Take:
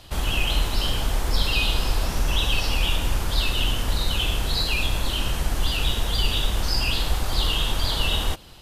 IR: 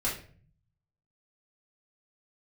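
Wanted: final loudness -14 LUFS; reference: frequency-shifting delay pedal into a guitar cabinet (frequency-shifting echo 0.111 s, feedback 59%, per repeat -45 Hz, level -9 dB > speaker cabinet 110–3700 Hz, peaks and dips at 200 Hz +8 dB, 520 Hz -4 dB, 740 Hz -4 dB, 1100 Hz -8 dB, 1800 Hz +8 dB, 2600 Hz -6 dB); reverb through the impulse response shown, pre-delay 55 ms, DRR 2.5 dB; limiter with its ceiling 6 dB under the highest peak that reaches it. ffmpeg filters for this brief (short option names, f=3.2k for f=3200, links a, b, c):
-filter_complex "[0:a]alimiter=limit=-14dB:level=0:latency=1,asplit=2[a][b];[1:a]atrim=start_sample=2205,adelay=55[c];[b][c]afir=irnorm=-1:irlink=0,volume=-9.5dB[d];[a][d]amix=inputs=2:normalize=0,asplit=8[e][f][g][h][i][j][k][l];[f]adelay=111,afreqshift=-45,volume=-9dB[m];[g]adelay=222,afreqshift=-90,volume=-13.6dB[n];[h]adelay=333,afreqshift=-135,volume=-18.2dB[o];[i]adelay=444,afreqshift=-180,volume=-22.7dB[p];[j]adelay=555,afreqshift=-225,volume=-27.3dB[q];[k]adelay=666,afreqshift=-270,volume=-31.9dB[r];[l]adelay=777,afreqshift=-315,volume=-36.5dB[s];[e][m][n][o][p][q][r][s]amix=inputs=8:normalize=0,highpass=110,equalizer=f=200:t=q:w=4:g=8,equalizer=f=520:t=q:w=4:g=-4,equalizer=f=740:t=q:w=4:g=-4,equalizer=f=1.1k:t=q:w=4:g=-8,equalizer=f=1.8k:t=q:w=4:g=8,equalizer=f=2.6k:t=q:w=4:g=-6,lowpass=f=3.7k:w=0.5412,lowpass=f=3.7k:w=1.3066,volume=12dB"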